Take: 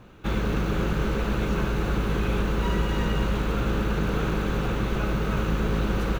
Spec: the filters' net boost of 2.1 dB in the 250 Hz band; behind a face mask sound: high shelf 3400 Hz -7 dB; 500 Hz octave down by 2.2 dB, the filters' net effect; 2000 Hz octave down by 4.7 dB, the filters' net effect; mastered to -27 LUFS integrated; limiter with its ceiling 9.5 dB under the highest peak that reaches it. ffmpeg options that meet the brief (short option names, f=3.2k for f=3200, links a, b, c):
-af "equalizer=f=250:t=o:g=4,equalizer=f=500:t=o:g=-4,equalizer=f=2k:t=o:g=-4.5,alimiter=limit=-21.5dB:level=0:latency=1,highshelf=f=3.4k:g=-7,volume=4dB"